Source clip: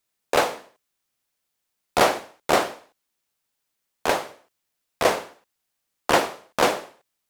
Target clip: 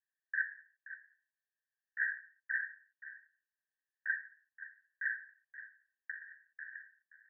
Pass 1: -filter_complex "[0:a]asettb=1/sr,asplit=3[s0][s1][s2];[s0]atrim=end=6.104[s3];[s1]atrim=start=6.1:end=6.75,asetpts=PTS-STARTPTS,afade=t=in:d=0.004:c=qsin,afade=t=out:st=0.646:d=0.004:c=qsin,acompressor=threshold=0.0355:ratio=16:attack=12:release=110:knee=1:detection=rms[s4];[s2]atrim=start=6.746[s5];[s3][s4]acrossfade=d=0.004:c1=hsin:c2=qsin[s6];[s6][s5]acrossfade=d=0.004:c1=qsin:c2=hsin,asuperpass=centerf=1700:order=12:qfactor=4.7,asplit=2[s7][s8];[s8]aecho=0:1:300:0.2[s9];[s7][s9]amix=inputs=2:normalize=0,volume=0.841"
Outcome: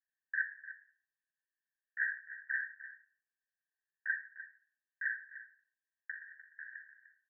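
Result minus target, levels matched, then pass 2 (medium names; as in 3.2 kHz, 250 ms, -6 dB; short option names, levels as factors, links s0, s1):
echo 226 ms early
-filter_complex "[0:a]asettb=1/sr,asplit=3[s0][s1][s2];[s0]atrim=end=6.104[s3];[s1]atrim=start=6.1:end=6.75,asetpts=PTS-STARTPTS,afade=t=in:d=0.004:c=qsin,afade=t=out:st=0.646:d=0.004:c=qsin,acompressor=threshold=0.0355:ratio=16:attack=12:release=110:knee=1:detection=rms[s4];[s2]atrim=start=6.746[s5];[s3][s4]acrossfade=d=0.004:c1=hsin:c2=qsin[s6];[s6][s5]acrossfade=d=0.004:c1=qsin:c2=hsin,asuperpass=centerf=1700:order=12:qfactor=4.7,asplit=2[s7][s8];[s8]aecho=0:1:526:0.2[s9];[s7][s9]amix=inputs=2:normalize=0,volume=0.841"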